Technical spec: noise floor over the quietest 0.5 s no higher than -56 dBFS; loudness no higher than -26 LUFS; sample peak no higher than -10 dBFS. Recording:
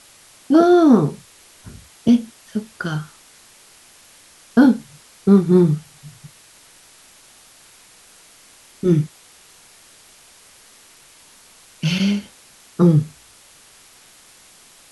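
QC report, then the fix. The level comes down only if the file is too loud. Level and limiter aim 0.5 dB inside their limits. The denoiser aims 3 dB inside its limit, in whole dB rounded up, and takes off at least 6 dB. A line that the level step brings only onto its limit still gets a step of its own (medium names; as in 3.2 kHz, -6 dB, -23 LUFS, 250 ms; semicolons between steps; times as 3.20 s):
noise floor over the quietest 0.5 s -49 dBFS: fail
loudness -17.5 LUFS: fail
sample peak -3.0 dBFS: fail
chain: trim -9 dB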